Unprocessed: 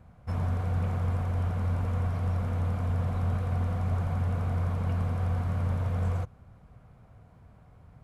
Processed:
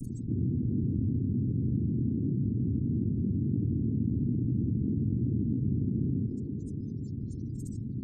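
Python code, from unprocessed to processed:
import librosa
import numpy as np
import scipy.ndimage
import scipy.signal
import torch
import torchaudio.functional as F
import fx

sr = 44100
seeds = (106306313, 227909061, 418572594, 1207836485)

y = fx.peak_eq(x, sr, hz=1400.0, db=6.0, octaves=0.25)
y = fx.noise_vocoder(y, sr, seeds[0], bands=3)
y = fx.quant_dither(y, sr, seeds[1], bits=10, dither='none')
y = fx.spec_gate(y, sr, threshold_db=-20, keep='strong')
y = scipy.signal.sosfilt(scipy.signal.cheby2(4, 70, [730.0, 2700.0], 'bandstop', fs=sr, output='sos'), y)
y = fx.peak_eq(y, sr, hz=170.0, db=-10.5, octaves=0.52)
y = fx.echo_banded(y, sr, ms=163, feedback_pct=67, hz=450.0, wet_db=-15.0)
y = fx.env_flatten(y, sr, amount_pct=70)
y = y * 10.0 ** (9.0 / 20.0)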